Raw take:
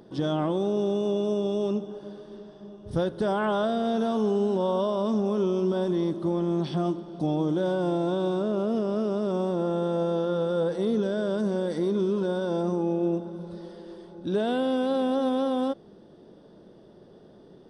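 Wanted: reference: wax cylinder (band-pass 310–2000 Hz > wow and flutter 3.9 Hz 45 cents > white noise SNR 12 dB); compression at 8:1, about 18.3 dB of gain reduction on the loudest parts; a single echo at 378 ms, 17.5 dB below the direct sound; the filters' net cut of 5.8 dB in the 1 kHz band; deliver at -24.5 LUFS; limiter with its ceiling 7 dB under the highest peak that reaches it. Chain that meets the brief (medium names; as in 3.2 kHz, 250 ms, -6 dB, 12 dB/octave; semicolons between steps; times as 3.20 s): peaking EQ 1 kHz -8 dB; compression 8:1, threshold -42 dBFS; peak limiter -38 dBFS; band-pass 310–2000 Hz; delay 378 ms -17.5 dB; wow and flutter 3.9 Hz 45 cents; white noise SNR 12 dB; trim +24.5 dB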